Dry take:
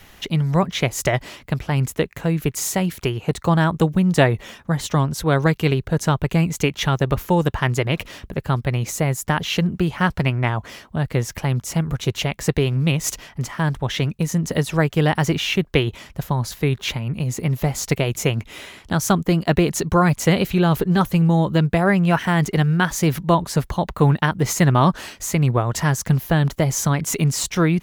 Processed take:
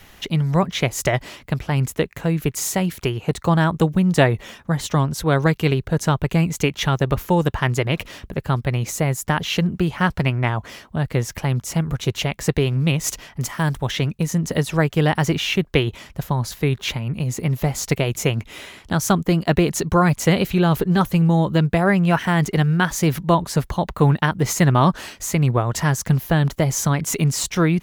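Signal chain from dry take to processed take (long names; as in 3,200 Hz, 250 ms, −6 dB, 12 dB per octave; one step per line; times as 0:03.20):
0:13.40–0:13.91: high-shelf EQ 7,000 Hz +11.5 dB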